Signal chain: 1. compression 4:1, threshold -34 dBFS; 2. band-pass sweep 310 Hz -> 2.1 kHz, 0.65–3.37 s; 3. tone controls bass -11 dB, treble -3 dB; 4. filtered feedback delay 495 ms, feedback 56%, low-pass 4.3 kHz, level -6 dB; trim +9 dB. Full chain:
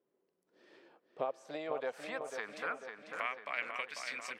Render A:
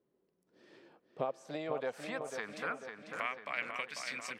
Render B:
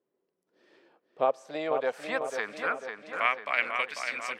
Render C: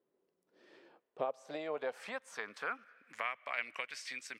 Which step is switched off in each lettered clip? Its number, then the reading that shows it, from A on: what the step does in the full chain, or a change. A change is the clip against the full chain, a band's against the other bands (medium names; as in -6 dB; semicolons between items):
3, 125 Hz band +8.5 dB; 1, mean gain reduction 6.0 dB; 4, echo-to-direct -5.0 dB to none